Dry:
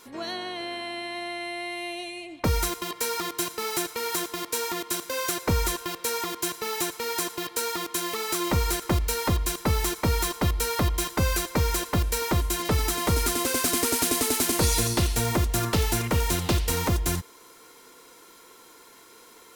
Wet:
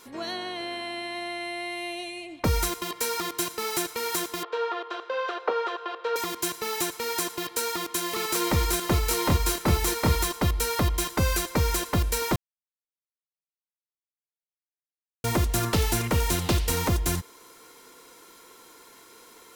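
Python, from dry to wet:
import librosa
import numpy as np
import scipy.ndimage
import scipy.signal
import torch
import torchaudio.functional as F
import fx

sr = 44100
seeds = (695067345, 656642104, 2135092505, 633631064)

y = fx.cabinet(x, sr, low_hz=430.0, low_slope=24, high_hz=3200.0, hz=(450.0, 760.0, 1300.0, 2200.0), db=(7, 4, 6, -8), at=(4.43, 6.16))
y = fx.echo_single(y, sr, ms=786, db=-3.0, at=(7.31, 10.24))
y = fx.edit(y, sr, fx.silence(start_s=12.36, length_s=2.88), tone=tone)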